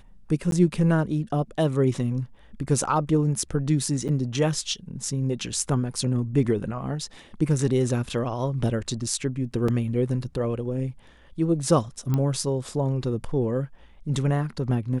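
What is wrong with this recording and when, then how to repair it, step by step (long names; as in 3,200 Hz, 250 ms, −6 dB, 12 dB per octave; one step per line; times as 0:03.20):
0:00.51–0:00.52: drop-out 12 ms
0:04.08–0:04.09: drop-out 8.1 ms
0:09.68: drop-out 4.2 ms
0:12.14: click −14 dBFS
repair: click removal
repair the gap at 0:00.51, 12 ms
repair the gap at 0:04.08, 8.1 ms
repair the gap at 0:09.68, 4.2 ms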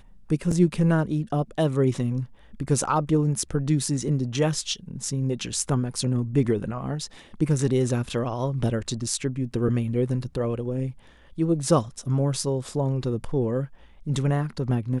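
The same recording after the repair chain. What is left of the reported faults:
none of them is left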